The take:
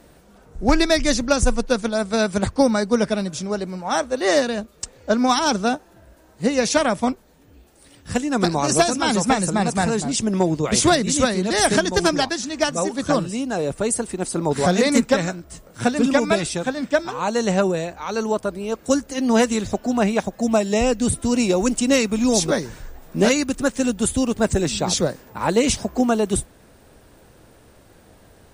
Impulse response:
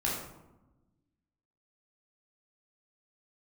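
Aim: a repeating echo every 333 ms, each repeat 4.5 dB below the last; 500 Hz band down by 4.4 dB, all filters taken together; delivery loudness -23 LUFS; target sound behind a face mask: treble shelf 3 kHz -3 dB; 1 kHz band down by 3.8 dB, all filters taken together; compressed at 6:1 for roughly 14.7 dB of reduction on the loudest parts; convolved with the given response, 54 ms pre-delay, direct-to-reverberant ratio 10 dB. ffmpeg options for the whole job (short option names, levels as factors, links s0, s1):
-filter_complex "[0:a]equalizer=f=500:t=o:g=-4.5,equalizer=f=1000:t=o:g=-3,acompressor=threshold=0.0316:ratio=6,aecho=1:1:333|666|999|1332|1665|1998|2331|2664|2997:0.596|0.357|0.214|0.129|0.0772|0.0463|0.0278|0.0167|0.01,asplit=2[s0][s1];[1:a]atrim=start_sample=2205,adelay=54[s2];[s1][s2]afir=irnorm=-1:irlink=0,volume=0.141[s3];[s0][s3]amix=inputs=2:normalize=0,highshelf=f=3000:g=-3,volume=2.66"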